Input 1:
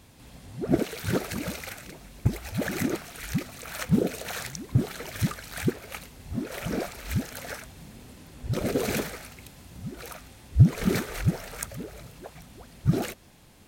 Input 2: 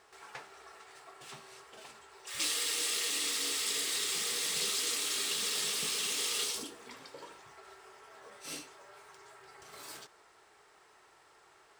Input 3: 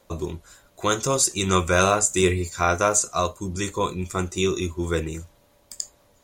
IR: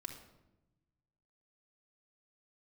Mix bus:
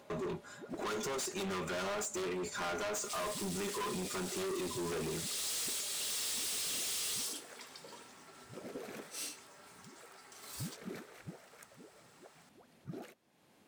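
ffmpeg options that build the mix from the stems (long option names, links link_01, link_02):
-filter_complex "[0:a]highshelf=frequency=8000:gain=12,acompressor=mode=upward:threshold=-32dB:ratio=2.5,volume=-17dB[link_01];[1:a]highshelf=frequency=3800:gain=10,adelay=700,volume=-5dB[link_02];[2:a]aecho=1:1:4.9:0.66,acompressor=threshold=-19dB:ratio=6,aeval=exprs='0.106*(abs(mod(val(0)/0.106+3,4)-2)-1)':channel_layout=same,volume=1dB,asplit=2[link_03][link_04];[link_04]apad=whole_len=550844[link_05];[link_02][link_05]sidechaincompress=threshold=-36dB:ratio=8:attack=46:release=503[link_06];[link_01][link_03]amix=inputs=2:normalize=0,aemphasis=mode=reproduction:type=75kf,alimiter=limit=-24dB:level=0:latency=1:release=19,volume=0dB[link_07];[link_06][link_07]amix=inputs=2:normalize=0,highpass=220,asoftclip=type=hard:threshold=-35.5dB"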